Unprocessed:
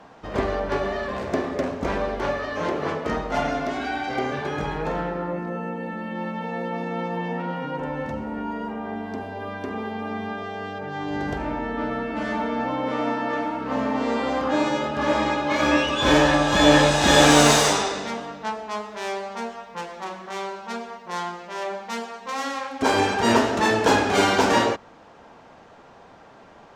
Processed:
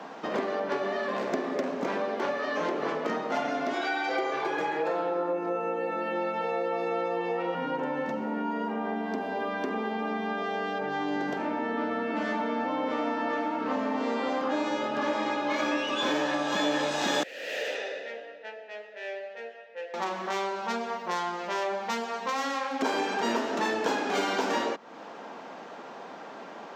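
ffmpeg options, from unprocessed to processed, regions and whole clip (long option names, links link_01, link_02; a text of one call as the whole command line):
ffmpeg -i in.wav -filter_complex "[0:a]asettb=1/sr,asplit=3[link_01][link_02][link_03];[link_01]atrim=end=3.734[link_04];[link_02]atrim=start=3.73:end=7.55,asetpts=PTS-STARTPTS,afade=type=in:duration=0.004:curve=qsin,afade=type=out:start_time=3.816:duration=0.004:curve=qsin,lowshelf=frequency=290:width_type=q:width=1.5:gain=-9,aecho=1:1:6:0.76,atrim=end_sample=168462[link_05];[link_03]atrim=start=7.546[link_06];[link_04][link_05]acrossfade=duration=0.004:curve1=hsin:curve2=qsin[link_07];[link_07][link_06]acrossfade=duration=0.004:curve1=qsin:curve2=hsin,asettb=1/sr,asplit=3[link_08][link_09][link_10];[link_08]atrim=end=17.234[link_11];[link_09]atrim=start=17.23:end=19.94,asetpts=PTS-STARTPTS,afade=type=in:duration=0.004:curve=qsin,afade=type=out:start_time=2.706:duration=0.004:curve=qsin,lowshelf=frequency=390:gain=-10,aeval=exprs='(mod(4.73*val(0)+1,2)-1)/4.73':channel_layout=same,asplit=3[link_12][link_13][link_14];[link_12]bandpass=frequency=530:width_type=q:width=8,volume=0dB[link_15];[link_13]bandpass=frequency=1840:width_type=q:width=8,volume=-6dB[link_16];[link_14]bandpass=frequency=2480:width_type=q:width=8,volume=-9dB[link_17];[link_15][link_16][link_17]amix=inputs=3:normalize=0[link_18];[link_10]atrim=start=19.936[link_19];[link_11][link_18]acrossfade=duration=0.004:curve1=hsin:curve2=qsin[link_20];[link_20][link_19]acrossfade=duration=0.004:curve1=qsin:curve2=hsin,acompressor=threshold=-34dB:ratio=4,highpass=frequency=200:width=0.5412,highpass=frequency=200:width=1.3066,equalizer=frequency=9400:width=3.4:gain=-13,volume=6dB" out.wav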